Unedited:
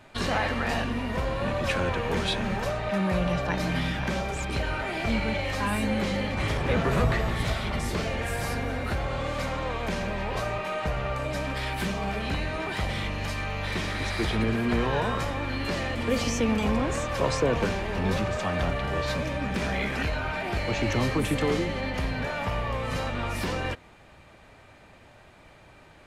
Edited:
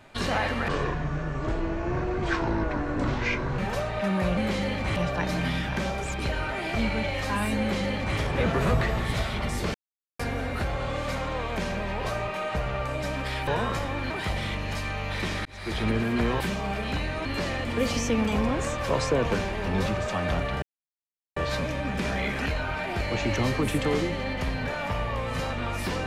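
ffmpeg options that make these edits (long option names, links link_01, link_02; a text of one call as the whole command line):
ffmpeg -i in.wav -filter_complex "[0:a]asplit=13[link_01][link_02][link_03][link_04][link_05][link_06][link_07][link_08][link_09][link_10][link_11][link_12][link_13];[link_01]atrim=end=0.684[link_14];[link_02]atrim=start=0.68:end=2.48,asetpts=PTS-STARTPTS,asetrate=27342,aresample=44100,atrim=end_sample=128032,asetpts=PTS-STARTPTS[link_15];[link_03]atrim=start=2.476:end=3.272[link_16];[link_04]atrim=start=5.898:end=6.492[link_17];[link_05]atrim=start=3.268:end=8.05,asetpts=PTS-STARTPTS,afade=type=out:start_time=4.778:duration=0.004:curve=hsin[link_18];[link_06]atrim=start=8.05:end=8.5,asetpts=PTS-STARTPTS,volume=0[link_19];[link_07]atrim=start=8.5:end=11.782,asetpts=PTS-STARTPTS,afade=type=in:duration=0.004:curve=hsin[link_20];[link_08]atrim=start=14.928:end=15.562[link_21];[link_09]atrim=start=12.628:end=13.98,asetpts=PTS-STARTPTS,afade=type=out:start_time=1.348:duration=0.004:curve=hsin[link_22];[link_10]atrim=start=13.98:end=14.932,asetpts=PTS-STARTPTS,afade=type=in:duration=0.4[link_23];[link_11]atrim=start=11.778:end=12.632[link_24];[link_12]atrim=start=15.558:end=18.93,asetpts=PTS-STARTPTS,afade=type=out:start_time=3.368:duration=0.004:curve=hsin,apad=pad_dur=0.74[link_25];[link_13]atrim=start=18.93,asetpts=PTS-STARTPTS,afade=type=in:duration=0.004:curve=hsin[link_26];[link_14][link_15]acrossfade=duration=0.004:curve1=hsin:curve2=hsin[link_27];[link_27][link_16]acrossfade=duration=0.004:curve1=hsin:curve2=hsin[link_28];[link_28][link_17]acrossfade=duration=0.004:curve1=hsin:curve2=hsin[link_29];[link_18][link_19][link_20]concat=n=3:v=0:a=1[link_30];[link_29][link_30]acrossfade=duration=0.004:curve1=hsin:curve2=hsin[link_31];[link_31][link_21]acrossfade=duration=0.004:curve1=hsin:curve2=hsin[link_32];[link_22][link_23]concat=n=2:v=0:a=1[link_33];[link_32][link_33]acrossfade=duration=0.004:curve1=hsin:curve2=hsin[link_34];[link_34][link_24]acrossfade=duration=0.004:curve1=hsin:curve2=hsin[link_35];[link_25][link_26]concat=n=2:v=0:a=1[link_36];[link_35][link_36]acrossfade=duration=0.004:curve1=hsin:curve2=hsin" out.wav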